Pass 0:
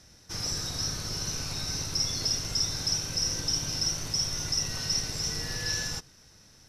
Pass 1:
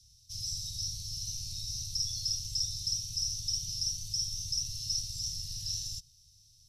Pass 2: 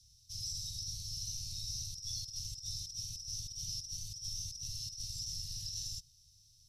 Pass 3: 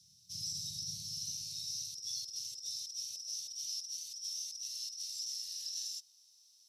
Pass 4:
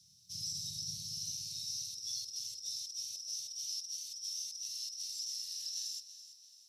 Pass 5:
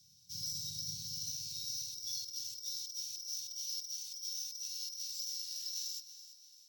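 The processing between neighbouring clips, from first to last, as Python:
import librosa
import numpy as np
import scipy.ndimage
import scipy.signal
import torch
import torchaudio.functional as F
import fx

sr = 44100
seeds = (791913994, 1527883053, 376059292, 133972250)

y1 = scipy.signal.sosfilt(scipy.signal.cheby2(4, 60, [330.0, 1400.0], 'bandstop', fs=sr, output='sos'), x)
y1 = y1 * 10.0 ** (-4.0 / 20.0)
y2 = fx.over_compress(y1, sr, threshold_db=-36.0, ratio=-0.5)
y2 = y2 * 10.0 ** (-4.5 / 20.0)
y3 = fx.filter_sweep_highpass(y2, sr, from_hz=190.0, to_hz=850.0, start_s=0.94, end_s=3.81, q=3.4)
y3 = y3 * 10.0 ** (1.0 / 20.0)
y4 = fx.echo_feedback(y3, sr, ms=333, feedback_pct=42, wet_db=-13.5)
y5 = np.repeat(scipy.signal.resample_poly(y4, 1, 2), 2)[:len(y4)]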